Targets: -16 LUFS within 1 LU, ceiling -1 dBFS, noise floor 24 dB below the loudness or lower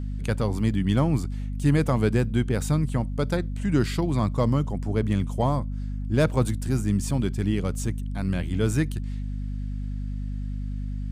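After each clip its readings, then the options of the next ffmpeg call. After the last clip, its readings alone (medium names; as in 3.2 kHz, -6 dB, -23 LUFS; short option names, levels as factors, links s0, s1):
hum 50 Hz; highest harmonic 250 Hz; hum level -27 dBFS; loudness -26.0 LUFS; peak level -9.5 dBFS; loudness target -16.0 LUFS
-> -af "bandreject=f=50:t=h:w=4,bandreject=f=100:t=h:w=4,bandreject=f=150:t=h:w=4,bandreject=f=200:t=h:w=4,bandreject=f=250:t=h:w=4"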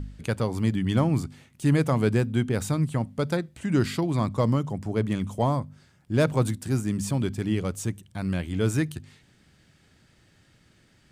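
hum not found; loudness -26.5 LUFS; peak level -10.5 dBFS; loudness target -16.0 LUFS
-> -af "volume=3.35,alimiter=limit=0.891:level=0:latency=1"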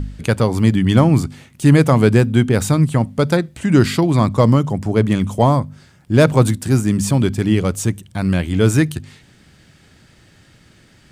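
loudness -16.0 LUFS; peak level -1.0 dBFS; noise floor -51 dBFS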